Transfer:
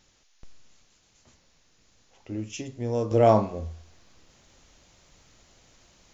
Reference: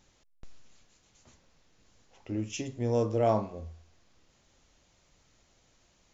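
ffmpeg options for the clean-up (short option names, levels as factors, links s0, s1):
-af "agate=range=0.0891:threshold=0.00178,asetnsamples=n=441:p=0,asendcmd='3.11 volume volume -7.5dB',volume=1"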